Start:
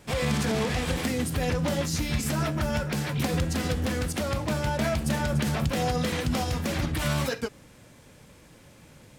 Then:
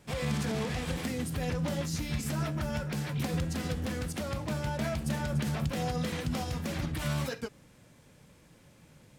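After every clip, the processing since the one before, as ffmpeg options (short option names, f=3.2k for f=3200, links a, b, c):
-af "equalizer=f=160:t=o:w=0.72:g=4,volume=-7dB"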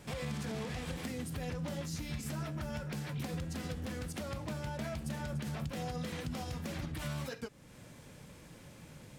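-af "acompressor=threshold=-51dB:ratio=2,volume=5dB"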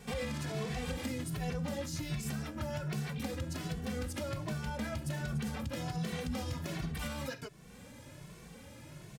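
-filter_complex "[0:a]asplit=2[a][b];[b]adelay=2.2,afreqshift=1.3[c];[a][c]amix=inputs=2:normalize=1,volume=5dB"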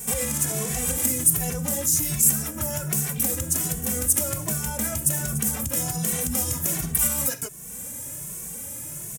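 -af "aexciter=amount=10:drive=7.8:freq=6.5k,volume=6.5dB"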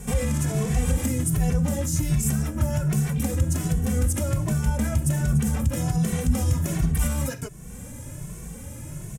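-af "aemphasis=mode=reproduction:type=bsi"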